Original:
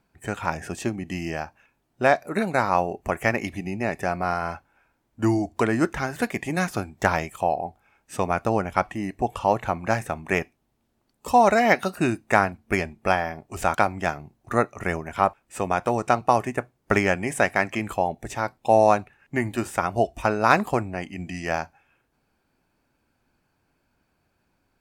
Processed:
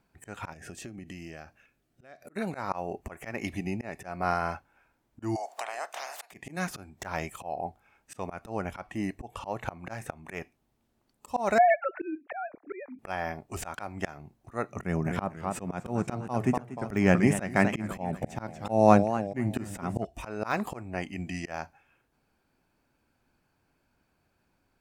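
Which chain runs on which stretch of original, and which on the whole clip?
0.53–2.36 bell 930 Hz -12.5 dB 0.4 oct + compressor, threshold -37 dBFS
5.35–6.3 spectral limiter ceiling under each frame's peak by 25 dB + compressor 4:1, threshold -37 dBFS + resonant high-pass 700 Hz, resonance Q 4.4
11.58–12.99 sine-wave speech + upward compressor, threshold -27 dBFS + LPF 1500 Hz
14.69–20.05 bell 170 Hz +12.5 dB 2 oct + warbling echo 0.243 s, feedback 44%, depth 164 cents, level -13 dB
whole clip: de-esser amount 50%; auto swell 0.249 s; gain -2 dB

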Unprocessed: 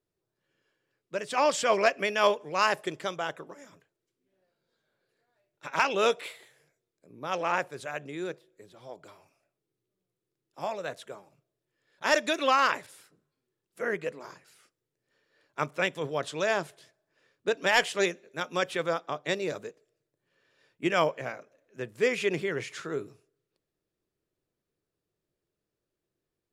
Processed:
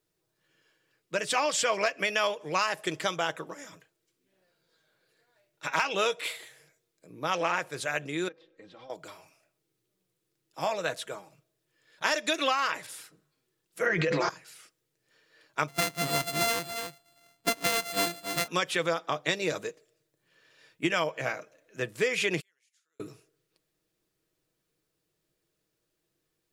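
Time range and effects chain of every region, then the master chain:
8.28–8.9 comb 3.8 ms, depth 64% + compressor 12:1, threshold -48 dBFS + air absorption 210 m
13.86–14.29 steep low-pass 6300 Hz + comb 5.8 ms, depth 73% + fast leveller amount 100%
15.68–18.48 sample sorter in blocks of 64 samples + echo 0.276 s -15 dB
22.4–23 flipped gate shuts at -34 dBFS, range -34 dB + differentiator
whole clip: tilt shelf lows -3.5 dB, about 1400 Hz; comb 6.3 ms, depth 36%; compressor 12:1, threshold -29 dBFS; gain +6 dB

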